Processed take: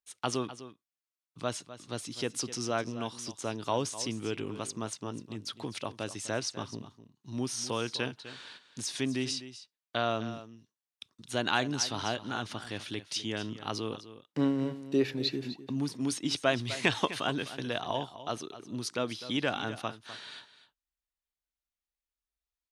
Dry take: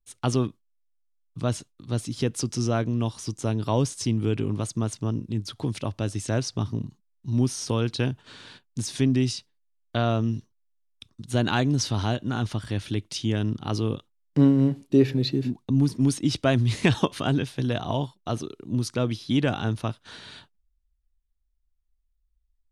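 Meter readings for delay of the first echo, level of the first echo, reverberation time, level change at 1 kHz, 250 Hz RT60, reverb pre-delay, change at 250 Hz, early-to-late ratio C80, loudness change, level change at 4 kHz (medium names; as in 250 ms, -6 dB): 253 ms, -14.0 dB, no reverb, -2.5 dB, no reverb, no reverb, -9.5 dB, no reverb, -7.5 dB, -1.0 dB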